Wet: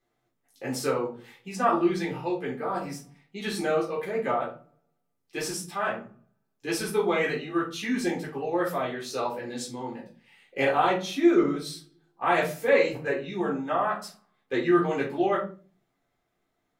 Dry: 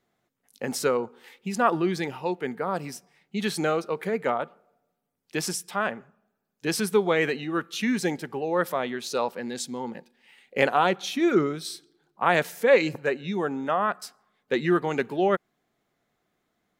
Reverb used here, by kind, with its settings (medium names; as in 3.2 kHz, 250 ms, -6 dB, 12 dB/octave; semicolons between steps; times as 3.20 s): simulated room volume 200 m³, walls furnished, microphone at 3.8 m; trim -9.5 dB